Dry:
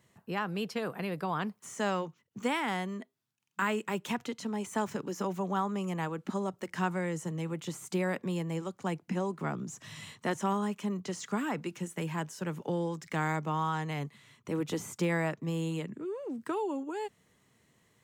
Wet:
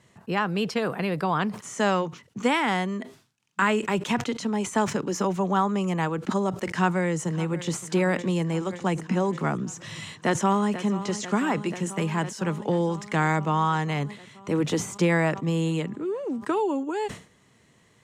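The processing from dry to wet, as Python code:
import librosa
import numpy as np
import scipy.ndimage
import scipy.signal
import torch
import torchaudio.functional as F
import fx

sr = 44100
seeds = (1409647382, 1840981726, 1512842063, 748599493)

y = fx.echo_throw(x, sr, start_s=6.72, length_s=1.14, ms=570, feedback_pct=70, wet_db=-16.5)
y = fx.echo_throw(y, sr, start_s=10.03, length_s=0.82, ms=490, feedback_pct=80, wet_db=-13.5)
y = scipy.signal.sosfilt(scipy.signal.butter(2, 9000.0, 'lowpass', fs=sr, output='sos'), y)
y = fx.sustainer(y, sr, db_per_s=140.0)
y = F.gain(torch.from_numpy(y), 8.0).numpy()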